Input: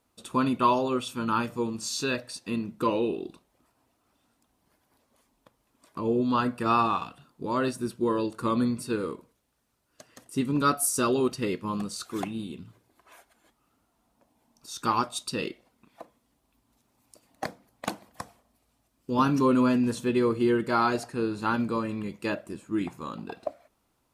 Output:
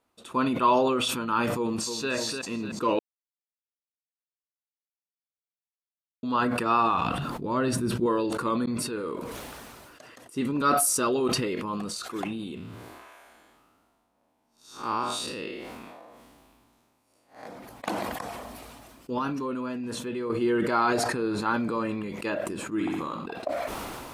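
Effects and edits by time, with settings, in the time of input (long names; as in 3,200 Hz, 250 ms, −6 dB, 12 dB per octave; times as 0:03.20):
0:01.56–0:02.11: delay throw 300 ms, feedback 30%, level −7 dB
0:02.99–0:06.23: silence
0:06.94–0:08.06: bass and treble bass +9 dB, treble −2 dB
0:08.66–0:09.10: fade in
0:12.55–0:17.47: spectrum smeared in time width 145 ms
0:19.18–0:20.30: downward compressor 2.5 to 1, threshold −30 dBFS
0:20.94–0:21.70: notch filter 2,800 Hz
0:22.65–0:23.26: flutter between parallel walls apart 11.1 metres, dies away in 0.73 s
whole clip: bass and treble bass −7 dB, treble −6 dB; level that may fall only so fast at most 23 dB per second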